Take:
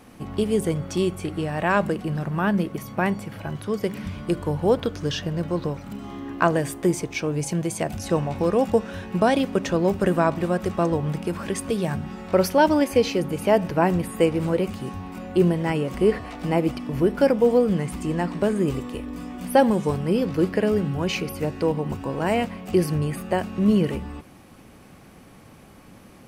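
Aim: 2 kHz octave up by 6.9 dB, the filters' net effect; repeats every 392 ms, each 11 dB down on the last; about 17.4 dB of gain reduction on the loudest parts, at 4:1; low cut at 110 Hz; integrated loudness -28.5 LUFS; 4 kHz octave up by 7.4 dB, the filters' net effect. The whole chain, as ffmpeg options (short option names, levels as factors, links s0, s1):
-af "highpass=110,equalizer=f=2000:t=o:g=7.5,equalizer=f=4000:t=o:g=7,acompressor=threshold=0.02:ratio=4,aecho=1:1:392|784|1176:0.282|0.0789|0.0221,volume=2.24"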